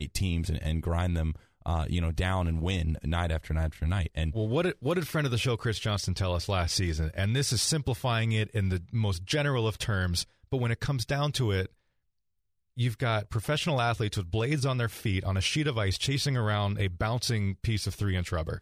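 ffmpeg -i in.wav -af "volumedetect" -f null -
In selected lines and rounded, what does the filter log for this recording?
mean_volume: -28.9 dB
max_volume: -15.0 dB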